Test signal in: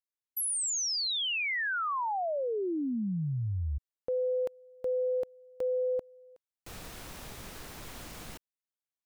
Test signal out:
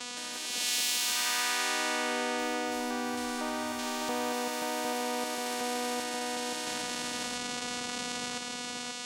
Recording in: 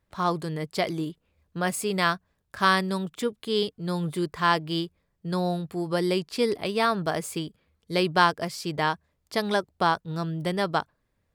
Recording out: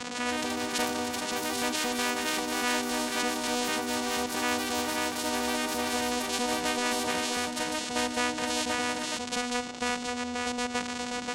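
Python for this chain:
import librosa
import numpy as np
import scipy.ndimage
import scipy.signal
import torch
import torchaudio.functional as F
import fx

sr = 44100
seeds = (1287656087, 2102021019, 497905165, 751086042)

p1 = x + 0.5 * 10.0 ** (-28.0 / 20.0) * np.sign(x)
p2 = fx.highpass(p1, sr, hz=140.0, slope=6)
p3 = fx.high_shelf(p2, sr, hz=3600.0, db=9.5)
p4 = fx.vocoder(p3, sr, bands=4, carrier='saw', carrier_hz=245.0)
p5 = p4 + fx.echo_single(p4, sr, ms=532, db=-5.5, dry=0)
p6 = fx.echo_pitch(p5, sr, ms=165, semitones=4, count=3, db_per_echo=-6.0)
p7 = fx.spectral_comp(p6, sr, ratio=2.0)
y = p7 * 10.0 ** (-3.5 / 20.0)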